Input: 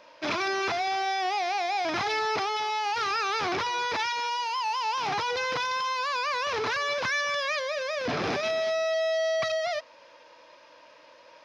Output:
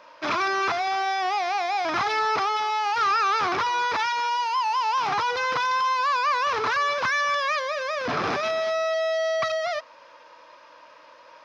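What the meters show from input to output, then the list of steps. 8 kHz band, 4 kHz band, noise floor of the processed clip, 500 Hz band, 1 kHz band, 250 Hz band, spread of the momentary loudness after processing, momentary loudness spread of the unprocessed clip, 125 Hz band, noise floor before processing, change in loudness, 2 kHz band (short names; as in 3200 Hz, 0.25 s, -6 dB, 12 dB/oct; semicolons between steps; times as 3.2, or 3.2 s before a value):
0.0 dB, +0.5 dB, -51 dBFS, +1.5 dB, +5.5 dB, +0.5 dB, 3 LU, 2 LU, 0.0 dB, -54 dBFS, +3.5 dB, +3.0 dB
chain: bell 1200 Hz +8.5 dB 0.87 oct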